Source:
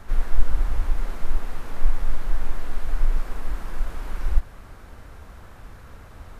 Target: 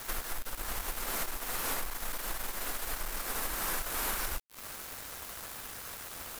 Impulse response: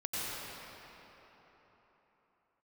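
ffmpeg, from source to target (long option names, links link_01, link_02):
-af "acompressor=threshold=-22dB:ratio=5,aemphasis=mode=production:type=riaa,aeval=exprs='val(0)*gte(abs(val(0)),0.00668)':channel_layout=same,volume=6.5dB"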